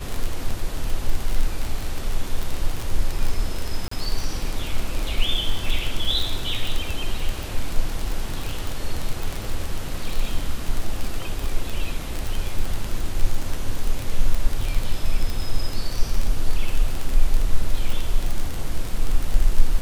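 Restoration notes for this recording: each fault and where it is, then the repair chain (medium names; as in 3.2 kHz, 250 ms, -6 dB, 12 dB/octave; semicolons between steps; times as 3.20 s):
crackle 31 per s -20 dBFS
3.88–3.91 s: dropout 34 ms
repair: de-click; interpolate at 3.88 s, 34 ms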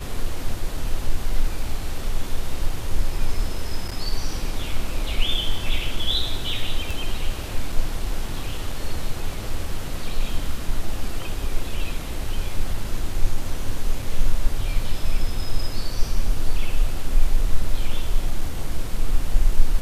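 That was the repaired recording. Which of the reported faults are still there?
nothing left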